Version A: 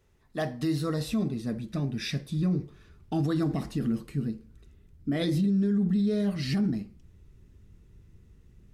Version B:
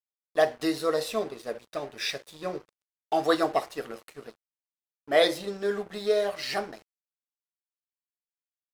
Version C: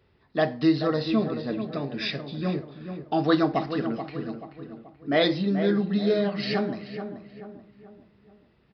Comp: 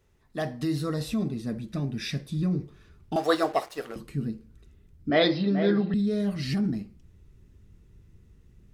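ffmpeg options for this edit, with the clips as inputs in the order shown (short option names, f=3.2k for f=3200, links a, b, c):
-filter_complex "[0:a]asplit=3[a][b][c];[a]atrim=end=3.162[d];[1:a]atrim=start=3.158:end=3.962[e];[b]atrim=start=3.958:end=5.102[f];[2:a]atrim=start=5.098:end=5.942[g];[c]atrim=start=5.938[h];[d][e]acrossfade=d=0.004:c1=hsin:c2=hsin[i];[i][f]acrossfade=d=0.004:c1=hsin:c2=hsin[j];[j][g]acrossfade=d=0.004:c1=hsin:c2=hsin[k];[k][h]acrossfade=d=0.004:c1=hsin:c2=hsin"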